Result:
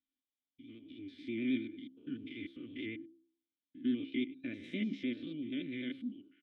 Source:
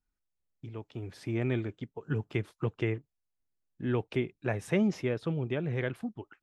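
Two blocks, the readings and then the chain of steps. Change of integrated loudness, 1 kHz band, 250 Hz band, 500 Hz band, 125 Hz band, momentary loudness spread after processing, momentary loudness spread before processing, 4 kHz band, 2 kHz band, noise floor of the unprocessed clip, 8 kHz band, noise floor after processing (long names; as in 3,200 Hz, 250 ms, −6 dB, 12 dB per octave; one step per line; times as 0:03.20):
−6.5 dB, below −25 dB, −3.0 dB, −14.0 dB, −20.0 dB, 15 LU, 13 LU, 0.0 dB, −7.0 dB, −84 dBFS, below −20 dB, below −85 dBFS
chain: spectrum averaged block by block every 100 ms
formant filter i
parametric band 3,600 Hz +13.5 dB 0.47 octaves
hum removal 66.37 Hz, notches 8
pitch vibrato 9.3 Hz 50 cents
comb filter 3.4 ms, depth 48%
level +5 dB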